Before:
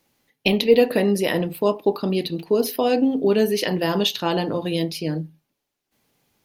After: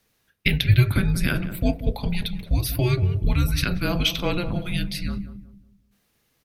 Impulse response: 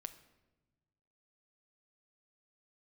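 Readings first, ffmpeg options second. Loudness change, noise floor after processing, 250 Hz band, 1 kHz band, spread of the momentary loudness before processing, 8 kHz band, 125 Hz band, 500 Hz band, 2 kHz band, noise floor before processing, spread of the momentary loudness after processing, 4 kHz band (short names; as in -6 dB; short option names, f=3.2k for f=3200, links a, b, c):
-2.5 dB, -69 dBFS, -5.0 dB, -8.0 dB, 9 LU, -0.5 dB, +9.0 dB, -13.0 dB, +1.0 dB, -80 dBFS, 10 LU, -1.5 dB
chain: -filter_complex "[0:a]lowshelf=f=270:g=-5,afreqshift=-360,asplit=2[a][b];[b]adelay=184,lowpass=f=860:p=1,volume=-10dB,asplit=2[c][d];[d]adelay=184,lowpass=f=860:p=1,volume=0.37,asplit=2[e][f];[f]adelay=184,lowpass=f=860:p=1,volume=0.37,asplit=2[g][h];[h]adelay=184,lowpass=f=860:p=1,volume=0.37[i];[c][e][g][i]amix=inputs=4:normalize=0[j];[a][j]amix=inputs=2:normalize=0"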